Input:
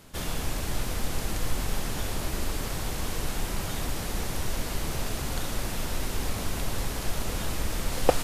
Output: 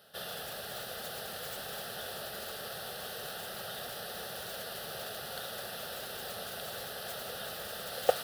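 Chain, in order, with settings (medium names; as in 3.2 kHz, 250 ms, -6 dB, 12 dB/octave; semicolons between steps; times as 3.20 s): static phaser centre 1.5 kHz, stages 8; modulation noise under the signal 22 dB; high-pass 280 Hz 12 dB/octave; trim -2 dB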